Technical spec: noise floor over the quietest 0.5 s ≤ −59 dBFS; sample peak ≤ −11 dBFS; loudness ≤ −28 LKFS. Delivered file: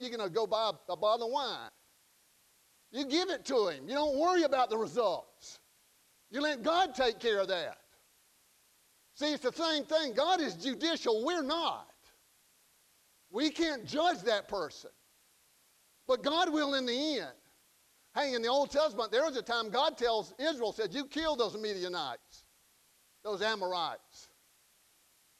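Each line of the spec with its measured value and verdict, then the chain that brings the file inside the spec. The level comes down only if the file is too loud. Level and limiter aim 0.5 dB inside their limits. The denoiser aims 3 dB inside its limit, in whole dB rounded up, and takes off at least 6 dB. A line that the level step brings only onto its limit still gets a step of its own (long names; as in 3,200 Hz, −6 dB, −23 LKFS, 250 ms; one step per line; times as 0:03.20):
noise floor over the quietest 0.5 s −68 dBFS: in spec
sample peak −17.0 dBFS: in spec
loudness −32.5 LKFS: in spec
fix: no processing needed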